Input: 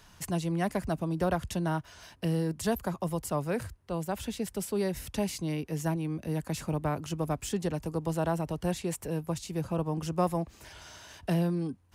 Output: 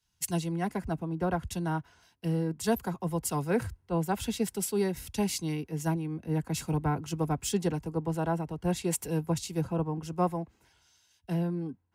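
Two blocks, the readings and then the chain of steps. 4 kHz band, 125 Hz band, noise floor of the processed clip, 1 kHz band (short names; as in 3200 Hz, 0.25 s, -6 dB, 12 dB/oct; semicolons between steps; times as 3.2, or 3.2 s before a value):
+1.5 dB, +0.5 dB, -70 dBFS, +0.5 dB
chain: notch comb 600 Hz; vocal rider 0.5 s; three-band expander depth 100%; gain +1.5 dB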